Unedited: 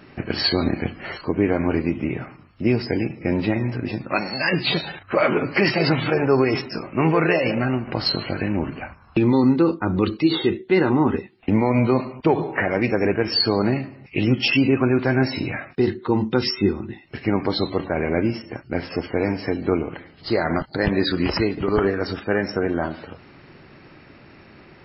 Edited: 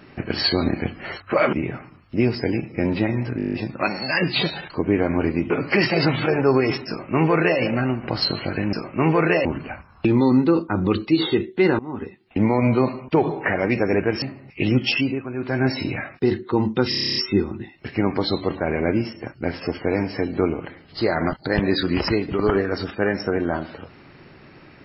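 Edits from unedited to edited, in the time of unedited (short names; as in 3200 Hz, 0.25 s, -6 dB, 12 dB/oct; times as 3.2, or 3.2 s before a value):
1.2–2 swap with 5.01–5.34
3.84 stutter 0.02 s, 9 plays
6.72–7.44 copy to 8.57
10.91–11.58 fade in, from -23.5 dB
13.34–13.78 cut
14.41–15.26 dip -12.5 dB, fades 0.38 s
16.45 stutter 0.03 s, 10 plays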